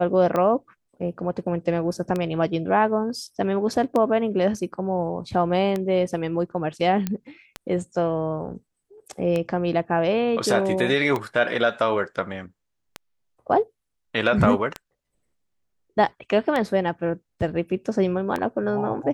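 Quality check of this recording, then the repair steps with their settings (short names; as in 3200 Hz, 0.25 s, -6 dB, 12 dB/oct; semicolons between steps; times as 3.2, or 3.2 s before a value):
tick 33 1/3 rpm -13 dBFS
7.07 pop -12 dBFS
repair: de-click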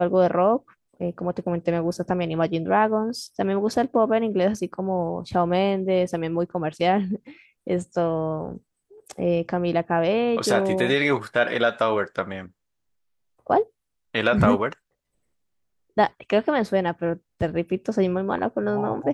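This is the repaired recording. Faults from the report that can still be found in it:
none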